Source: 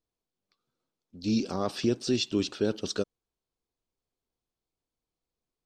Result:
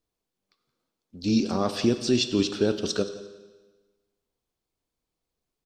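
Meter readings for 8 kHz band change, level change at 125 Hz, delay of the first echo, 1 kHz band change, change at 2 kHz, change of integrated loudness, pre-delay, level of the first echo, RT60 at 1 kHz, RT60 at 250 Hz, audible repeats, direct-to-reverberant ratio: +4.5 dB, +4.0 dB, 174 ms, +4.5 dB, +4.5 dB, +4.5 dB, 19 ms, -18.5 dB, 1.3 s, 1.3 s, 2, 9.5 dB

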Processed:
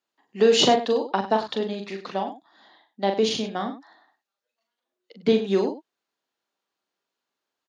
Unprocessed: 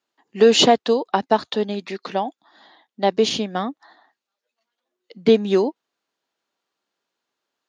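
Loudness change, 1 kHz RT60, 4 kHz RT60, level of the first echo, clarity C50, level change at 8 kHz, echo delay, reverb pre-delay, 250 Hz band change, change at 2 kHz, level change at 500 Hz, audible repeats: -4.0 dB, no reverb, no reverb, -5.5 dB, no reverb, -4.0 dB, 41 ms, no reverb, -4.0 dB, -4.0 dB, -4.0 dB, 2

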